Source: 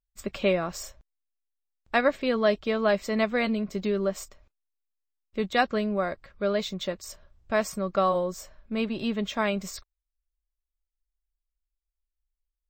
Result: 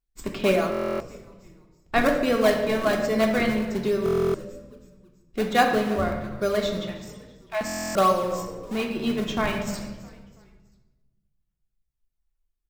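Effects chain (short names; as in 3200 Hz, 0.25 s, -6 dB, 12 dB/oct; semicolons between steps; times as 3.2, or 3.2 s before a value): reverb removal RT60 0.95 s; in parallel at -6.5 dB: decimation with a swept rate 38×, swing 160% 1.2 Hz; 6.77–7.61 on the sum: rippled Chebyshev high-pass 610 Hz, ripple 9 dB; frequency-shifting echo 0.327 s, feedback 42%, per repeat -76 Hz, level -20 dB; on a send at -2 dB: reverb RT60 1.2 s, pre-delay 3 ms; on the sum: stuck buffer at 0.7/4.04/7.65, samples 1024, times 12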